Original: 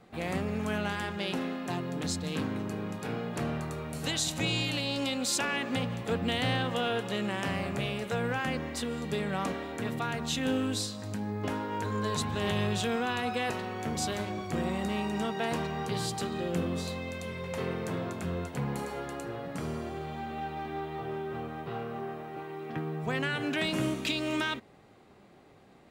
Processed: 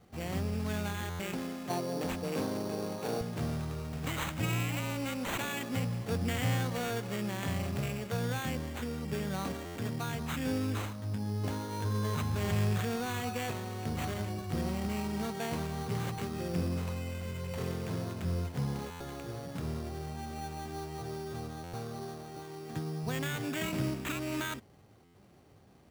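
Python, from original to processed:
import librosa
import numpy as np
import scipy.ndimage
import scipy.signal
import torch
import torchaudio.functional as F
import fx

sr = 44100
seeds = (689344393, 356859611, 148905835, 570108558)

y = fx.peak_eq(x, sr, hz=fx.steps((0.0, 74.0), (1.7, 580.0), (3.21, 87.0)), db=11.0, octaves=1.6)
y = fx.sample_hold(y, sr, seeds[0], rate_hz=5100.0, jitter_pct=0)
y = fx.buffer_glitch(y, sr, at_s=(1.09, 9.65, 18.9, 21.63, 25.04), block=512, repeats=8)
y = y * librosa.db_to_amplitude(-5.5)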